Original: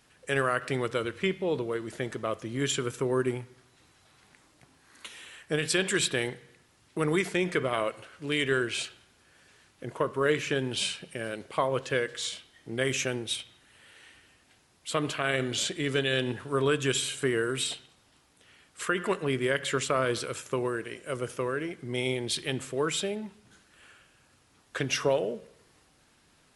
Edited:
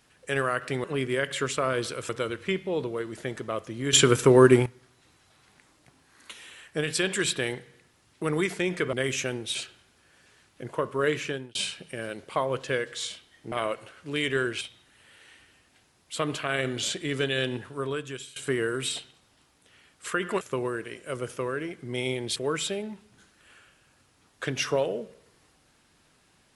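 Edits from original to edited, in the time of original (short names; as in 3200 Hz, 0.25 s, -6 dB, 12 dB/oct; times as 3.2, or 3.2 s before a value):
2.68–3.41 gain +11.5 dB
7.68–8.77 swap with 12.74–13.36
10.43–10.77 fade out
16.16–17.11 fade out, to -20.5 dB
19.16–20.41 move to 0.84
22.36–22.69 cut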